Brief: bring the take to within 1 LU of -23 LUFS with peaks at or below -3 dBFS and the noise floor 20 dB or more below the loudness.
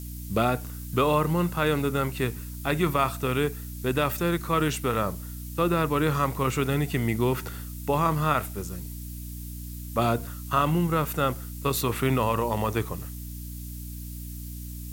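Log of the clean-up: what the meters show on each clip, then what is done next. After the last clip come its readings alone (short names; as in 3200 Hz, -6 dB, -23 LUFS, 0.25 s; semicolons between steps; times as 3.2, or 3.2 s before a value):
hum 60 Hz; harmonics up to 300 Hz; hum level -35 dBFS; noise floor -37 dBFS; noise floor target -47 dBFS; loudness -26.5 LUFS; peak -9.5 dBFS; loudness target -23.0 LUFS
-> de-hum 60 Hz, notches 5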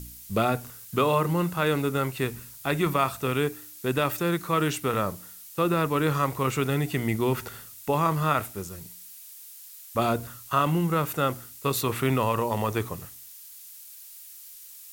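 hum none; noise floor -46 dBFS; noise floor target -47 dBFS
-> noise print and reduce 6 dB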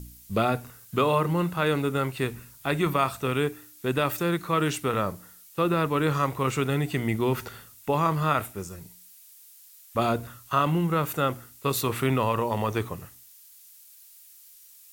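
noise floor -52 dBFS; loudness -26.5 LUFS; peak -10.0 dBFS; loudness target -23.0 LUFS
-> gain +3.5 dB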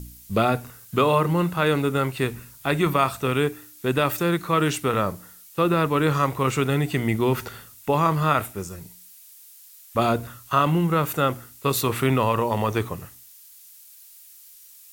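loudness -23.0 LUFS; peak -6.5 dBFS; noise floor -49 dBFS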